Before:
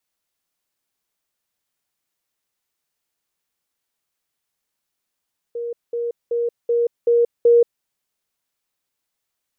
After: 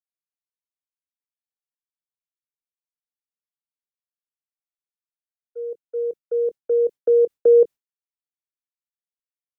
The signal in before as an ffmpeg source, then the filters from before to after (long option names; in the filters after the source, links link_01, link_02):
-f lavfi -i "aevalsrc='pow(10,(-24+3*floor(t/0.38))/20)*sin(2*PI*472*t)*clip(min(mod(t,0.38),0.18-mod(t,0.38))/0.005,0,1)':duration=2.28:sample_rate=44100"
-filter_complex "[0:a]agate=range=-33dB:threshold=-25dB:ratio=3:detection=peak,acrossover=split=370|380[link_01][link_02][link_03];[link_01]asplit=2[link_04][link_05];[link_05]adelay=23,volume=-5dB[link_06];[link_04][link_06]amix=inputs=2:normalize=0[link_07];[link_07][link_02][link_03]amix=inputs=3:normalize=0"